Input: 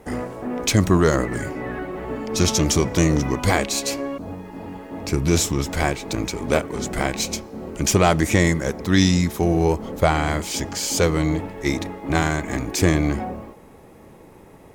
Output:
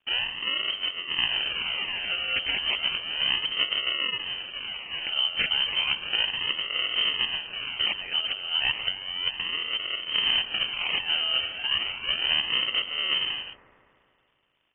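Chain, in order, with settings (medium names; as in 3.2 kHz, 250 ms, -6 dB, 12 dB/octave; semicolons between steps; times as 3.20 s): local Wiener filter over 15 samples; gate -40 dBFS, range -29 dB; compressor with a negative ratio -22 dBFS, ratio -0.5; decimation with a swept rate 39×, swing 100% 0.33 Hz; feedback echo behind a high-pass 141 ms, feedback 68%, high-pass 2.3 kHz, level -9.5 dB; frequency shift +330 Hz; crackle 130 per s -48 dBFS; frequency inversion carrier 3.5 kHz; trim -3.5 dB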